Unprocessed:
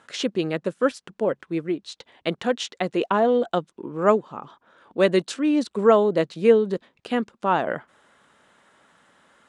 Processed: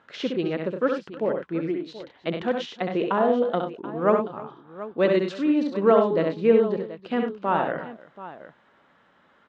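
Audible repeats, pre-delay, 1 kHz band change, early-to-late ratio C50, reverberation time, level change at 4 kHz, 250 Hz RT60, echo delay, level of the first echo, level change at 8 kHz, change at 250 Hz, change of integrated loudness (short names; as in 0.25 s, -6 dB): 4, none, -1.5 dB, none, none, -5.0 dB, none, 66 ms, -5.0 dB, under -15 dB, -0.5 dB, -1.0 dB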